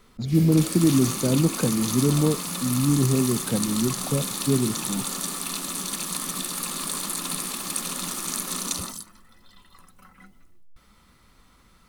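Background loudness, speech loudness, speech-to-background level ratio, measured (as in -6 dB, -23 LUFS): -28.0 LUFS, -23.5 LUFS, 4.5 dB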